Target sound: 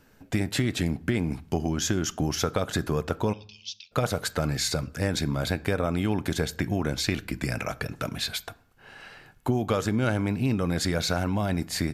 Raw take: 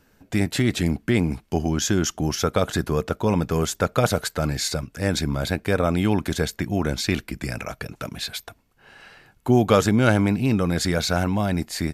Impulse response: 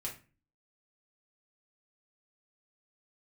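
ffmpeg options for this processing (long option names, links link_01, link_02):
-filter_complex "[0:a]acompressor=threshold=-23dB:ratio=6,asplit=3[link_01][link_02][link_03];[link_01]afade=type=out:start_time=3.32:duration=0.02[link_04];[link_02]asuperpass=centerf=3900:order=12:qfactor=1.2,afade=type=in:start_time=3.32:duration=0.02,afade=type=out:start_time=3.91:duration=0.02[link_05];[link_03]afade=type=in:start_time=3.91:duration=0.02[link_06];[link_04][link_05][link_06]amix=inputs=3:normalize=0,asplit=2[link_07][link_08];[1:a]atrim=start_sample=2205,asetrate=28224,aresample=44100,lowpass=5700[link_09];[link_08][link_09]afir=irnorm=-1:irlink=0,volume=-16.5dB[link_10];[link_07][link_10]amix=inputs=2:normalize=0"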